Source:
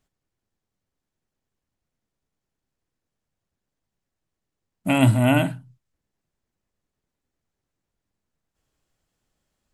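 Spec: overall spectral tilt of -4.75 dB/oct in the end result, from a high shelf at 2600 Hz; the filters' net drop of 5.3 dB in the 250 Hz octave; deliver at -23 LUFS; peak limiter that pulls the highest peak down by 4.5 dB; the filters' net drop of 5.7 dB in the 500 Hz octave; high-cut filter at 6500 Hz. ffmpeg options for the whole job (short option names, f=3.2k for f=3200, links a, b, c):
-af "lowpass=6.5k,equalizer=f=250:t=o:g=-4,equalizer=f=500:t=o:g=-8,highshelf=f=2.6k:g=7,volume=1dB,alimiter=limit=-12.5dB:level=0:latency=1"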